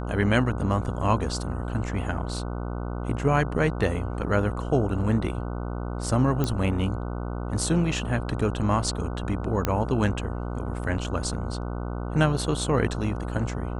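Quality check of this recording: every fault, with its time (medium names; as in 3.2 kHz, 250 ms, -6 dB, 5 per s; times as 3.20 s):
buzz 60 Hz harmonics 25 -31 dBFS
6.44 s: pop -12 dBFS
9.65 s: pop -9 dBFS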